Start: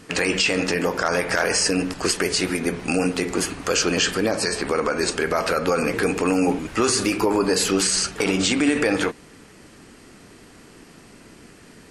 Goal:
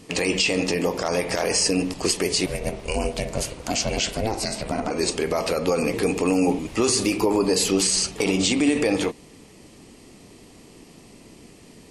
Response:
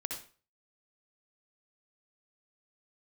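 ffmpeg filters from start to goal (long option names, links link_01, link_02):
-filter_complex "[0:a]equalizer=frequency=1500:width=2.7:gain=-14.5,asettb=1/sr,asplit=3[link_01][link_02][link_03];[link_01]atrim=end=2.464[link_04];[link_02]atrim=start=2.46:end=4.91,asetpts=PTS-STARTPTS,afade=type=in:duration=0.004:curve=qsin,afade=type=out:start_time=2.446:duration=0.004:curve=qsin,aeval=exprs='val(0)*sin(2*PI*220*n/s)':channel_layout=same[link_05];[link_03]atrim=start=4.906[link_06];[link_04][link_05]acrossfade=duration=0.004:curve1=hsin:curve2=qsin[link_07];[link_07][link_06]acrossfade=duration=0.004:curve1=qsin:curve2=hsin"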